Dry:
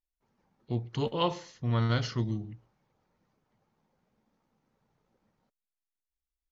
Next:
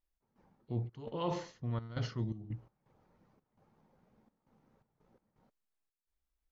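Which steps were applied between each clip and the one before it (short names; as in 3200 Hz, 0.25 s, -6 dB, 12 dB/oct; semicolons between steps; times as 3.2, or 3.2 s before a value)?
high shelf 2100 Hz -10 dB; reverse; compressor 6:1, threshold -39 dBFS, peak gain reduction 14.5 dB; reverse; step gate "x.xxx.xxxx.xx." 84 bpm -12 dB; gain +6 dB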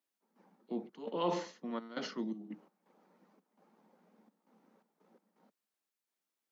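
steep high-pass 180 Hz 72 dB/oct; gain +3 dB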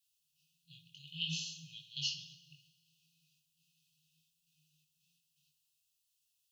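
FFT band-reject 170–2500 Hz; chorus 0.68 Hz, delay 18.5 ms, depth 4.2 ms; two-slope reverb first 0.83 s, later 2.5 s, from -18 dB, DRR 8.5 dB; gain +13 dB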